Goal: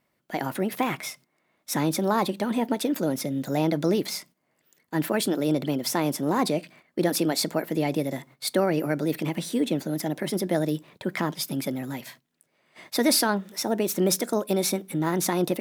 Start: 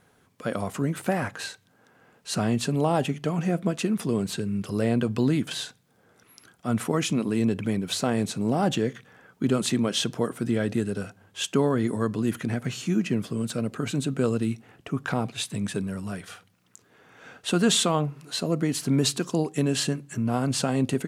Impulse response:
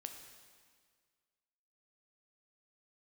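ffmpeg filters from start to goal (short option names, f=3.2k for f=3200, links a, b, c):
-af "highshelf=f=10k:g=5.5,asetrate=59535,aresample=44100,agate=range=-12dB:threshold=-49dB:ratio=16:detection=peak"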